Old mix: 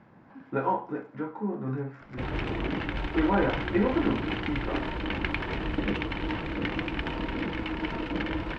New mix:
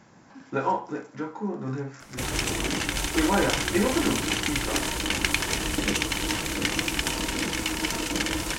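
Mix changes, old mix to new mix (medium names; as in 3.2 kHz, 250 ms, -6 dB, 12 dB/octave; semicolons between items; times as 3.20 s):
background: remove distance through air 90 m; master: remove distance through air 450 m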